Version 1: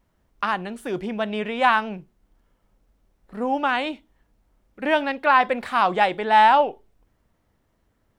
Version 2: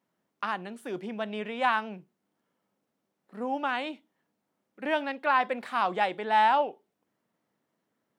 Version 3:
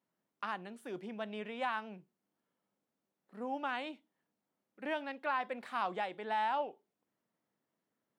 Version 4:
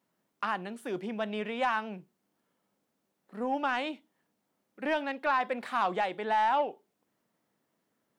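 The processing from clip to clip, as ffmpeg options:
ffmpeg -i in.wav -af "highpass=frequency=160:width=0.5412,highpass=frequency=160:width=1.3066,volume=-7.5dB" out.wav
ffmpeg -i in.wav -af "alimiter=limit=-16dB:level=0:latency=1:release=297,volume=-7.5dB" out.wav
ffmpeg -i in.wav -af "asoftclip=type=tanh:threshold=-25dB,volume=8dB" out.wav

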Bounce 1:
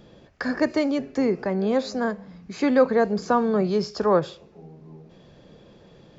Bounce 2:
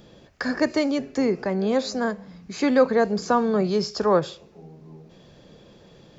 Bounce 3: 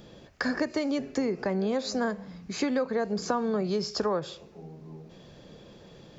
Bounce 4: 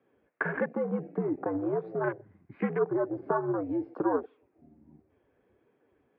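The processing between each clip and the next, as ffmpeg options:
ffmpeg -i in.wav -af "highshelf=frequency=4400:gain=8" out.wav
ffmpeg -i in.wav -af "acompressor=threshold=-24dB:ratio=12" out.wav
ffmpeg -i in.wav -af "flanger=delay=3.3:depth=5.8:regen=50:speed=1.4:shape=triangular,afwtdn=0.01,highpass=frequency=320:width_type=q:width=0.5412,highpass=frequency=320:width_type=q:width=1.307,lowpass=frequency=2400:width_type=q:width=0.5176,lowpass=frequency=2400:width_type=q:width=0.7071,lowpass=frequency=2400:width_type=q:width=1.932,afreqshift=-86,volume=5dB" out.wav

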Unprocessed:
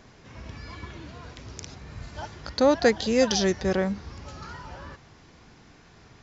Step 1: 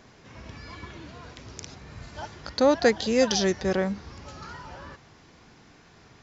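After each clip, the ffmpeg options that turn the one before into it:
ffmpeg -i in.wav -af "lowshelf=frequency=86:gain=-6.5" out.wav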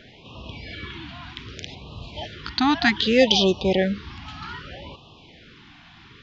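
ffmpeg -i in.wav -af "lowpass=frequency=3300:width_type=q:width=3,afftfilt=real='re*(1-between(b*sr/1024,450*pow(1800/450,0.5+0.5*sin(2*PI*0.64*pts/sr))/1.41,450*pow(1800/450,0.5+0.5*sin(2*PI*0.64*pts/sr))*1.41))':imag='im*(1-between(b*sr/1024,450*pow(1800/450,0.5+0.5*sin(2*PI*0.64*pts/sr))/1.41,450*pow(1800/450,0.5+0.5*sin(2*PI*0.64*pts/sr))*1.41))':win_size=1024:overlap=0.75,volume=4.5dB" out.wav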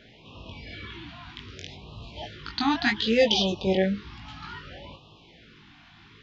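ffmpeg -i in.wav -af "flanger=delay=17.5:depth=3.9:speed=0.94,volume=-1.5dB" out.wav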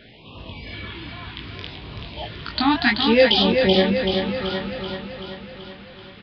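ffmpeg -i in.wav -af "aecho=1:1:382|764|1146|1528|1910|2292|2674|3056:0.531|0.313|0.185|0.109|0.0643|0.038|0.0224|0.0132,aresample=11025,aresample=44100,volume=5.5dB" out.wav

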